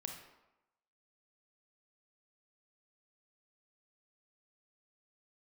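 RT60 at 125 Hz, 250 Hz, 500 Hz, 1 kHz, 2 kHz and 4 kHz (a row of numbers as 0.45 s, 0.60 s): 0.70 s, 0.90 s, 0.90 s, 1.0 s, 0.80 s, 0.65 s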